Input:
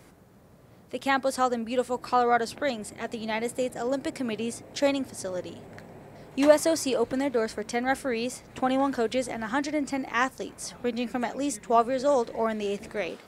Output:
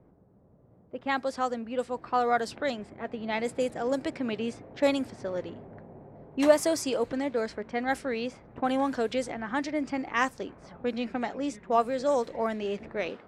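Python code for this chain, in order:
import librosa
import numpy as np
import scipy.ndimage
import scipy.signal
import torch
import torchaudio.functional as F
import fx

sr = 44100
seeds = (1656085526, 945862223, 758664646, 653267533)

y = fx.rider(x, sr, range_db=4, speed_s=2.0)
y = fx.env_lowpass(y, sr, base_hz=680.0, full_db=-20.0)
y = F.gain(torch.from_numpy(y), -3.0).numpy()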